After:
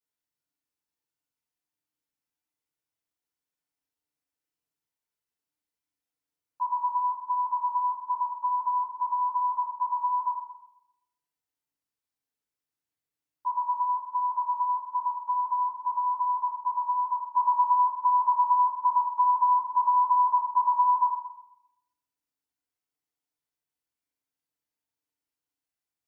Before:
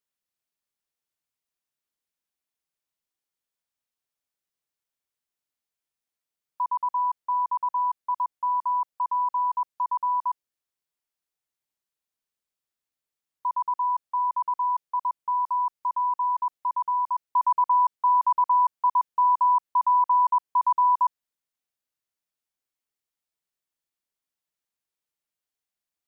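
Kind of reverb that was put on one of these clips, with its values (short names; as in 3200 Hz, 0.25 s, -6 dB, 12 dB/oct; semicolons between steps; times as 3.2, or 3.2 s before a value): FDN reverb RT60 0.82 s, low-frequency decay 1.55×, high-frequency decay 0.6×, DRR -7.5 dB; gain -10 dB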